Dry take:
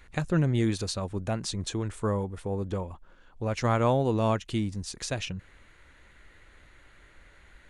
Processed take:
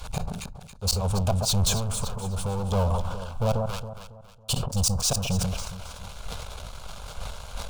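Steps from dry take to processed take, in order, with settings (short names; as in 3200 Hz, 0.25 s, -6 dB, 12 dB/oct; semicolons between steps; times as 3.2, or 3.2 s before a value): 3.49–4.98 high shelf 2800 Hz +9.5 dB; flipped gate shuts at -20 dBFS, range -42 dB; in parallel at -8 dB: one-sided clip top -38.5 dBFS, bottom -20.5 dBFS; on the sum: sample leveller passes 5; 1.72–2.72 compressor, threshold -23 dBFS, peak gain reduction 5.5 dB; fixed phaser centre 780 Hz, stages 4; echo with dull and thin repeats by turns 0.138 s, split 1300 Hz, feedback 67%, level -10 dB; on a send at -22.5 dB: reverb RT60 0.35 s, pre-delay 5 ms; on the sum: sustainer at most 37 dB/s; gain -2 dB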